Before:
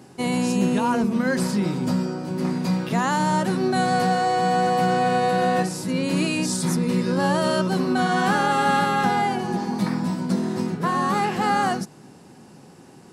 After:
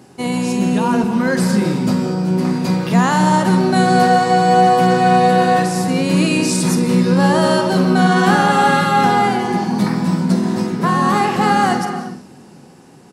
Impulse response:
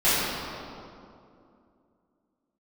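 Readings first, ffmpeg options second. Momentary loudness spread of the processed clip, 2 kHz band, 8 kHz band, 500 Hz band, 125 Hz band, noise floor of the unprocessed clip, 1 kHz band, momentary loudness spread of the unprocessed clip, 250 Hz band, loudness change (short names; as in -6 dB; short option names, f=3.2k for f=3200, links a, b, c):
6 LU, +6.5 dB, +6.0 dB, +7.0 dB, +8.5 dB, -47 dBFS, +7.5 dB, 5 LU, +7.5 dB, +7.5 dB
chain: -filter_complex "[0:a]dynaudnorm=f=260:g=9:m=3.5dB,asplit=2[a][b];[b]adelay=49,volume=-12dB[c];[a][c]amix=inputs=2:normalize=0,asplit=2[d][e];[1:a]atrim=start_sample=2205,afade=t=out:st=0.33:d=0.01,atrim=end_sample=14994,adelay=135[f];[e][f]afir=irnorm=-1:irlink=0,volume=-25.5dB[g];[d][g]amix=inputs=2:normalize=0,volume=2.5dB"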